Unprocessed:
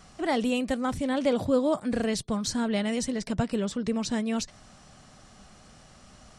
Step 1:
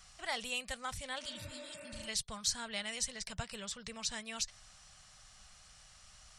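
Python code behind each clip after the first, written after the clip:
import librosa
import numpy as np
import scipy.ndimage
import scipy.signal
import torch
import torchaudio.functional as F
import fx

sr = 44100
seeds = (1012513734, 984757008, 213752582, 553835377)

y = fx.spec_repair(x, sr, seeds[0], start_s=1.26, length_s=0.8, low_hz=270.0, high_hz=2800.0, source='before')
y = fx.tone_stack(y, sr, knobs='10-0-10')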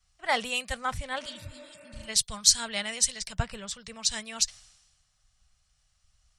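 y = fx.band_widen(x, sr, depth_pct=100)
y = F.gain(torch.from_numpy(y), 6.5).numpy()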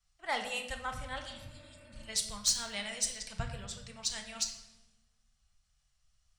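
y = 10.0 ** (-11.0 / 20.0) * np.tanh(x / 10.0 ** (-11.0 / 20.0))
y = fx.room_shoebox(y, sr, seeds[1], volume_m3=420.0, walls='mixed', distance_m=0.77)
y = F.gain(torch.from_numpy(y), -7.5).numpy()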